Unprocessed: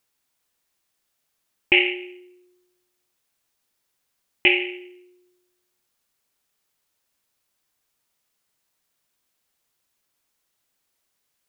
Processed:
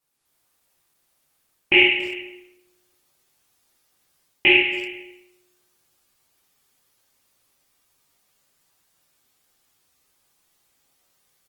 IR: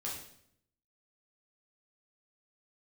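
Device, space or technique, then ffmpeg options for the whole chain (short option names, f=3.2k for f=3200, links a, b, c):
speakerphone in a meeting room: -filter_complex "[1:a]atrim=start_sample=2205[a];[0:a][a]afir=irnorm=-1:irlink=0,asplit=2[b][c];[c]adelay=280,highpass=300,lowpass=3.4k,asoftclip=type=hard:threshold=-14dB,volume=-18dB[d];[b][d]amix=inputs=2:normalize=0,dynaudnorm=f=170:g=3:m=7.5dB" -ar 48000 -c:a libopus -b:a 20k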